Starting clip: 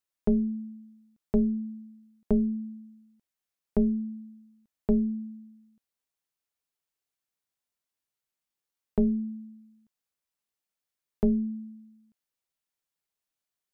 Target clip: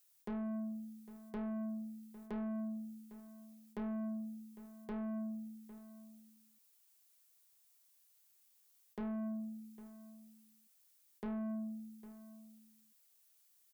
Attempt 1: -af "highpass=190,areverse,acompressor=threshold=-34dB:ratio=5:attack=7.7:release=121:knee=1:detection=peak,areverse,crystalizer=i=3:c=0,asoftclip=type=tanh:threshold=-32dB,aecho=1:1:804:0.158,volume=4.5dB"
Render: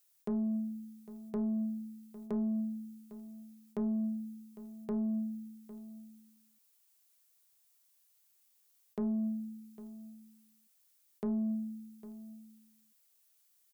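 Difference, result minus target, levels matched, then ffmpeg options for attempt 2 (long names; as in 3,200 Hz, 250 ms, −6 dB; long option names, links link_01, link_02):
soft clipping: distortion −11 dB
-af "highpass=190,areverse,acompressor=threshold=-34dB:ratio=5:attack=7.7:release=121:knee=1:detection=peak,areverse,crystalizer=i=3:c=0,asoftclip=type=tanh:threshold=-42.5dB,aecho=1:1:804:0.158,volume=4.5dB"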